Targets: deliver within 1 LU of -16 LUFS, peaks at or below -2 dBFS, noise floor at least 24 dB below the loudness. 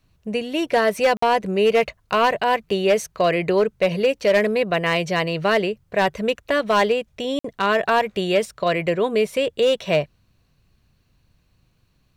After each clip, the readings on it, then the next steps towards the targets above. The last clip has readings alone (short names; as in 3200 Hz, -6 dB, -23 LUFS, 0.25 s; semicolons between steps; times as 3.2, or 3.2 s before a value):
clipped 0.8%; flat tops at -11.0 dBFS; dropouts 2; longest dropout 54 ms; loudness -20.5 LUFS; peak -11.0 dBFS; loudness target -16.0 LUFS
-> clip repair -11 dBFS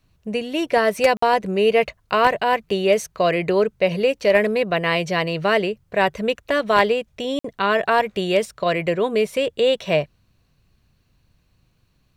clipped 0.0%; dropouts 2; longest dropout 54 ms
-> interpolate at 1.17/7.39, 54 ms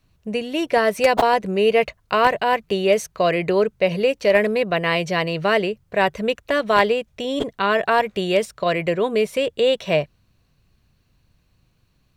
dropouts 0; loudness -20.0 LUFS; peak -2.0 dBFS; loudness target -16.0 LUFS
-> gain +4 dB; limiter -2 dBFS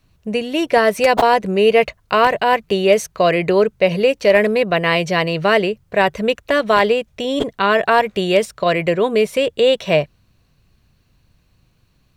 loudness -16.5 LUFS; peak -2.0 dBFS; noise floor -60 dBFS